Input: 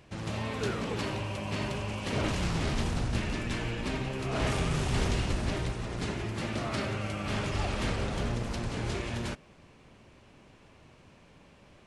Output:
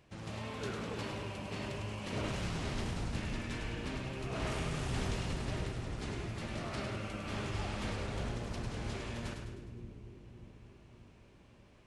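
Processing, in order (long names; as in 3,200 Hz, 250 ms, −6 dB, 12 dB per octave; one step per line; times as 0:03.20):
echo with a time of its own for lows and highs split 410 Hz, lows 586 ms, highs 103 ms, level −5.5 dB
level −8 dB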